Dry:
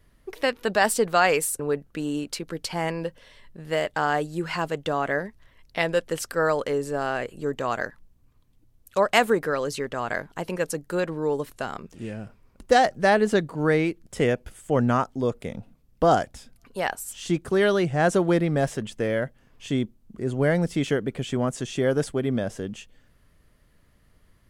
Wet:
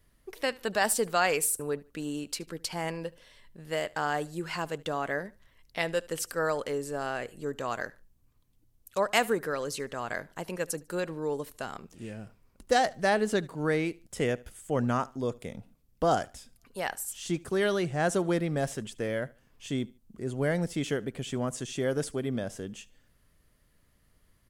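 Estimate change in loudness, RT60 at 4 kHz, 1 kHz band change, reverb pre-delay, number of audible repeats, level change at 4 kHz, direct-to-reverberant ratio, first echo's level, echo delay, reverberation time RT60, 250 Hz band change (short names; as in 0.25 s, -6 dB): -6.0 dB, none, -6.0 dB, none, 2, -4.0 dB, none, -23.0 dB, 74 ms, none, -6.5 dB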